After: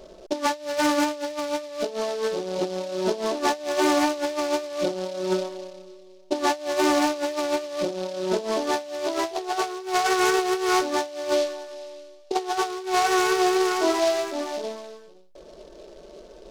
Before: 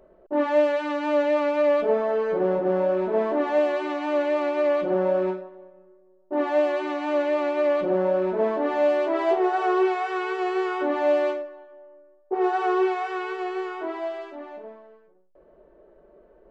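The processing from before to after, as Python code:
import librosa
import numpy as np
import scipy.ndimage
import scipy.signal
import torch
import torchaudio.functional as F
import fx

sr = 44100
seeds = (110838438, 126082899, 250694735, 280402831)

y = fx.over_compress(x, sr, threshold_db=-28.0, ratio=-0.5)
y = fx.noise_mod_delay(y, sr, seeds[0], noise_hz=3900.0, depth_ms=0.055)
y = y * librosa.db_to_amplitude(4.0)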